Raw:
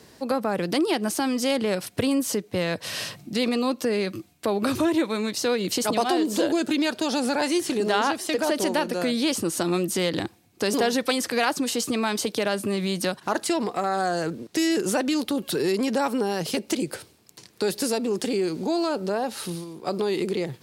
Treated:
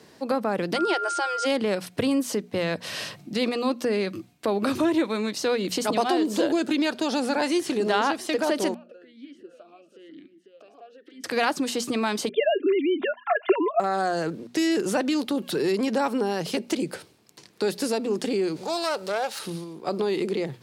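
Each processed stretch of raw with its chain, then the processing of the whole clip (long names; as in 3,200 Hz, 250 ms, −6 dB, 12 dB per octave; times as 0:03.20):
0:00.75–0:01.45: steady tone 1,400 Hz −26 dBFS + linear-phase brick-wall band-pass 320–9,500 Hz
0:08.74–0:11.24: downward compressor 12 to 1, threshold −33 dBFS + single-tap delay 495 ms −7.5 dB + formant filter swept between two vowels a-i 1 Hz
0:12.29–0:13.80: three sine waves on the formant tracks + comb filter 2.9 ms, depth 82%
0:18.56–0:19.39: phase distortion by the signal itself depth 0.085 ms + drawn EQ curve 120 Hz 0 dB, 180 Hz −8 dB, 250 Hz −16 dB, 520 Hz 0 dB, 7,400 Hz +8 dB
whole clip: high-pass filter 110 Hz; high-shelf EQ 6,800 Hz −8 dB; mains-hum notches 60/120/180/240 Hz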